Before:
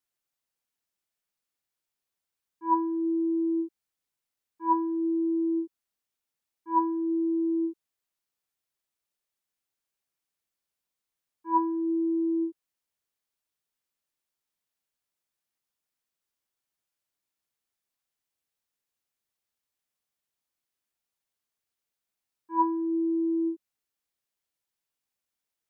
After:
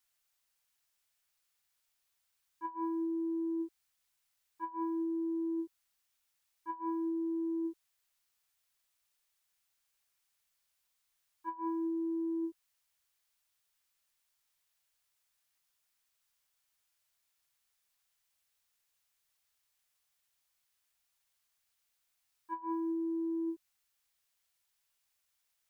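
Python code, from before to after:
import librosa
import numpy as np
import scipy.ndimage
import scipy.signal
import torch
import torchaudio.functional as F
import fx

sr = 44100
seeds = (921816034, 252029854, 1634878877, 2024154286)

y = fx.peak_eq(x, sr, hz=270.0, db=-14.5, octaves=2.2)
y = fx.over_compress(y, sr, threshold_db=-41.0, ratio=-1.0)
y = y * 10.0 ** (4.0 / 20.0)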